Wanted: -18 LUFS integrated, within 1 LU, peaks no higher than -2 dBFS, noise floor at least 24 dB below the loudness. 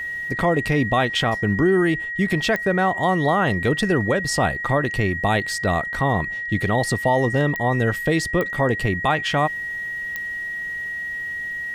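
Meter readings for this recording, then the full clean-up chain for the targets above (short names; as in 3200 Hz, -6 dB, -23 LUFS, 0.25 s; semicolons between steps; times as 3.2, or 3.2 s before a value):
clicks 4; steady tone 1900 Hz; tone level -26 dBFS; loudness -21.5 LUFS; peak -7.5 dBFS; loudness target -18.0 LUFS
-> de-click; notch 1900 Hz, Q 30; gain +3.5 dB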